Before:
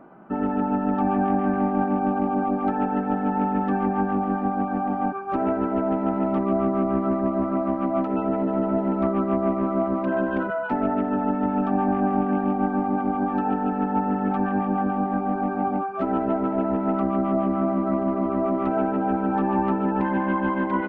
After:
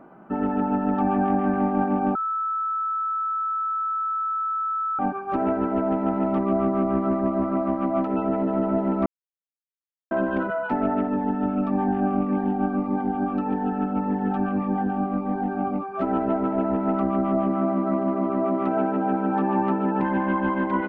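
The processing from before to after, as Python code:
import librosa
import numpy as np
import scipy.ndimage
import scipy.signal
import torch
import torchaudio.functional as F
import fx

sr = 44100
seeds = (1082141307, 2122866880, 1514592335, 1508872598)

y = fx.notch_cascade(x, sr, direction='falling', hz=1.7, at=(11.07, 15.92))
y = fx.highpass(y, sr, hz=110.0, slope=12, at=(17.49, 20.03))
y = fx.edit(y, sr, fx.bleep(start_s=2.15, length_s=2.84, hz=1310.0, db=-23.0),
    fx.silence(start_s=9.06, length_s=1.05), tone=tone)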